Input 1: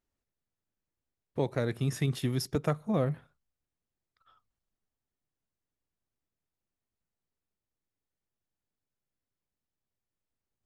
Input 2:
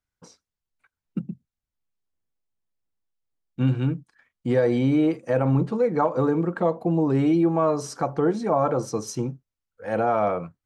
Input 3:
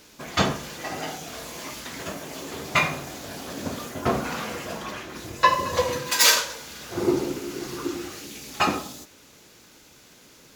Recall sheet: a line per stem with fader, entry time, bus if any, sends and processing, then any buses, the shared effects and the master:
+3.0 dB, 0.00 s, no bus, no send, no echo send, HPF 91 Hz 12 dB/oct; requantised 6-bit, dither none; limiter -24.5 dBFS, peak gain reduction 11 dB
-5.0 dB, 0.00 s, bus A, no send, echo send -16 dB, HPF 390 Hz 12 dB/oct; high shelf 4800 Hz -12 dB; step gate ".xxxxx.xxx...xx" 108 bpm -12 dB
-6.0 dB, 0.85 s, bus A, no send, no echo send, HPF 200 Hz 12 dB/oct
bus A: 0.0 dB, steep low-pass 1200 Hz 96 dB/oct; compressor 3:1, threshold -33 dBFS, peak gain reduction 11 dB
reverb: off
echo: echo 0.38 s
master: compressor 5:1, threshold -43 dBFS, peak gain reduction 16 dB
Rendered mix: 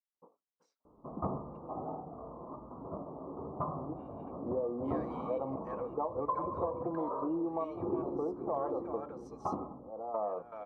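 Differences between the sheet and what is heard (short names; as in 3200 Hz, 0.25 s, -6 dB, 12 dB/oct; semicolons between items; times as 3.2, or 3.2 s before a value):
stem 1: muted; stem 3: missing HPF 200 Hz 12 dB/oct; master: missing compressor 5:1, threshold -43 dBFS, peak gain reduction 16 dB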